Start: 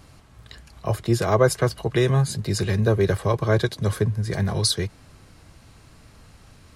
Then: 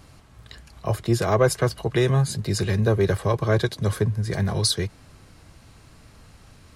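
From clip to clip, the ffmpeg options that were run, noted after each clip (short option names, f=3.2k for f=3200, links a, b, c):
-af "asoftclip=type=tanh:threshold=-6.5dB"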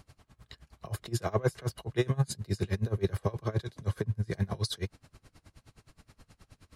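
-af "aeval=exprs='val(0)*pow(10,-26*(0.5-0.5*cos(2*PI*9.5*n/s))/20)':c=same,volume=-3dB"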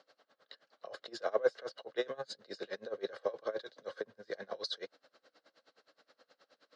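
-af "highpass=f=340:w=0.5412,highpass=f=340:w=1.3066,equalizer=f=370:t=q:w=4:g=-8,equalizer=f=530:t=q:w=4:g=10,equalizer=f=960:t=q:w=4:g=-6,equalizer=f=1.5k:t=q:w=4:g=4,equalizer=f=2.4k:t=q:w=4:g=-8,equalizer=f=4.2k:t=q:w=4:g=3,lowpass=f=5.2k:w=0.5412,lowpass=f=5.2k:w=1.3066,volume=-3dB"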